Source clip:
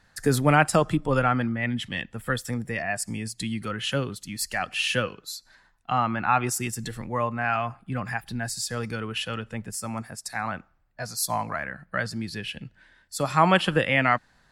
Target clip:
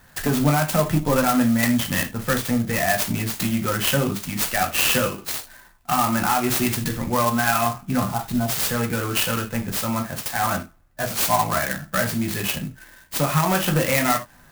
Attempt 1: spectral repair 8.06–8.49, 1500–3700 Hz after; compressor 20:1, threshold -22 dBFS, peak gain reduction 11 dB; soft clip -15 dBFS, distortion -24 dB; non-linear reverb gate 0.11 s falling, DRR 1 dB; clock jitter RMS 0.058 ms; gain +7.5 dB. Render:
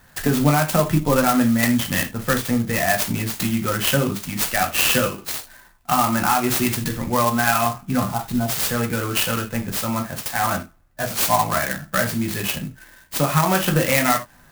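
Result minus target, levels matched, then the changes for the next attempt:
soft clip: distortion -9 dB
change: soft clip -22 dBFS, distortion -14 dB

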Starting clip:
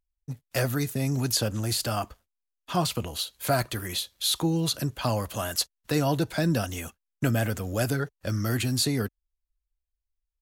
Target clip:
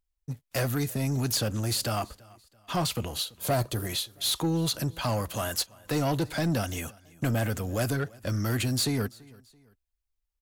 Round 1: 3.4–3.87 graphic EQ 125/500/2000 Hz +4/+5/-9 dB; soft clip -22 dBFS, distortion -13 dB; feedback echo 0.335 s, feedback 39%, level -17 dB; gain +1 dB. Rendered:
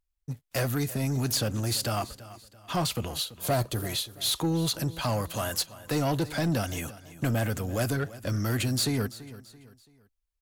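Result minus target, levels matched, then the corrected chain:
echo-to-direct +7 dB
3.4–3.87 graphic EQ 125/500/2000 Hz +4/+5/-9 dB; soft clip -22 dBFS, distortion -13 dB; feedback echo 0.335 s, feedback 39%, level -24 dB; gain +1 dB

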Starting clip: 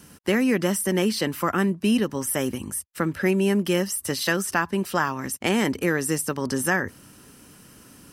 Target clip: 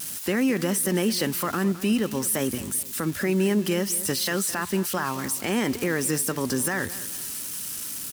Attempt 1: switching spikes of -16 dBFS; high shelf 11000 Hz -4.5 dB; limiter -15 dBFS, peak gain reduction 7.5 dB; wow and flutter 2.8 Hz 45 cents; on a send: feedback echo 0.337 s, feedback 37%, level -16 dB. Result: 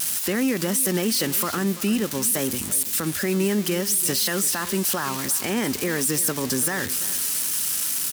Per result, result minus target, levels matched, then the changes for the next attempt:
echo 0.124 s late; switching spikes: distortion +8 dB
change: feedback echo 0.213 s, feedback 37%, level -16 dB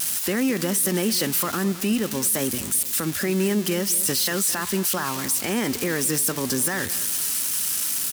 switching spikes: distortion +8 dB
change: switching spikes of -24.5 dBFS

